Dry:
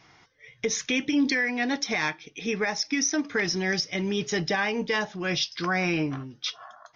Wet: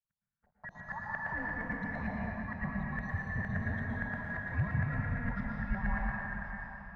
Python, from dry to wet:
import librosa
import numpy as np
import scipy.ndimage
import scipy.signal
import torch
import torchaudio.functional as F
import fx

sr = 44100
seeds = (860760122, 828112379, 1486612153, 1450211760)

y = fx.band_shuffle(x, sr, order='2143')
y = np.sign(y) * np.maximum(np.abs(y) - 10.0 ** (-48.5 / 20.0), 0.0)
y = fx.filter_lfo_lowpass(y, sr, shape='saw_up', hz=8.7, low_hz=640.0, high_hz=1700.0, q=5.6)
y = fx.curve_eq(y, sr, hz=(190.0, 340.0, 1700.0, 2900.0, 4700.0, 8300.0), db=(0, -28, -20, -23, -24, -14))
y = fx.rev_plate(y, sr, seeds[0], rt60_s=3.5, hf_ratio=0.9, predelay_ms=100, drr_db=-4.0)